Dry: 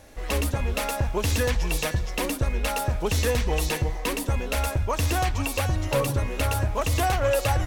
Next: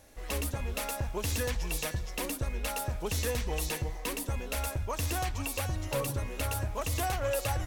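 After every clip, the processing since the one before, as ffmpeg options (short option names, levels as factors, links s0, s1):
-af "highshelf=f=6400:g=7,volume=0.376"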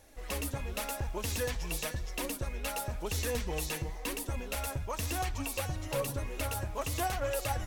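-af "flanger=delay=2.1:depth=5.5:regen=53:speed=0.95:shape=triangular,volume=1.33"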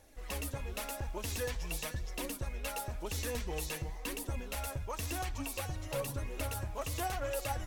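-af "aphaser=in_gain=1:out_gain=1:delay=3.7:decay=0.2:speed=0.47:type=triangular,volume=0.668"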